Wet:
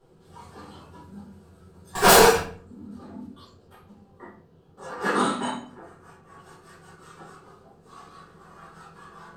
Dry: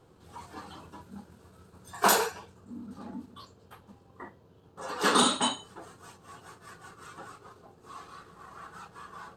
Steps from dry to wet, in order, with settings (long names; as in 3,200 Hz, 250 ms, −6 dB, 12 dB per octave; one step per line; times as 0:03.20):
0:01.95–0:02.38: leveller curve on the samples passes 5
0:04.88–0:06.39: high shelf with overshoot 2,600 Hz −7 dB, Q 1.5
rectangular room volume 41 cubic metres, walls mixed, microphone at 1.3 metres
level −7.5 dB